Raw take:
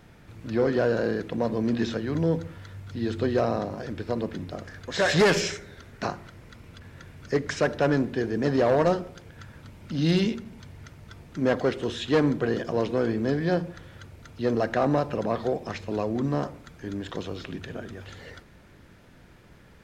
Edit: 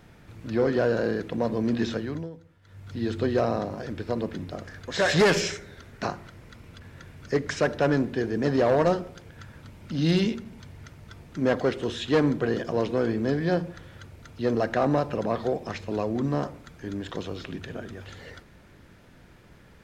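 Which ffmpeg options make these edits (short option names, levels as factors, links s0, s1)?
-filter_complex "[0:a]asplit=3[s0][s1][s2];[s0]atrim=end=2.3,asetpts=PTS-STARTPTS,afade=t=out:st=1.99:d=0.31:silence=0.125893[s3];[s1]atrim=start=2.3:end=2.62,asetpts=PTS-STARTPTS,volume=0.126[s4];[s2]atrim=start=2.62,asetpts=PTS-STARTPTS,afade=t=in:d=0.31:silence=0.125893[s5];[s3][s4][s5]concat=n=3:v=0:a=1"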